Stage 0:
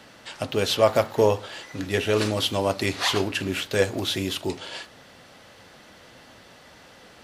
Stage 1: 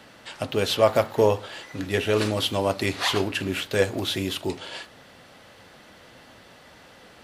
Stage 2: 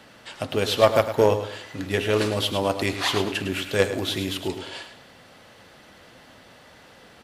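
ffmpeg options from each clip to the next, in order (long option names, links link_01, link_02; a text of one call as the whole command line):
ffmpeg -i in.wav -af "equalizer=frequency=5900:width=1.5:gain=-3" out.wav
ffmpeg -i in.wav -af "aecho=1:1:106|212|318|424:0.335|0.111|0.0365|0.012,aeval=exprs='0.531*(cos(1*acos(clip(val(0)/0.531,-1,1)))-cos(1*PI/2))+0.0668*(cos(3*acos(clip(val(0)/0.531,-1,1)))-cos(3*PI/2))':channel_layout=same,volume=3.5dB" out.wav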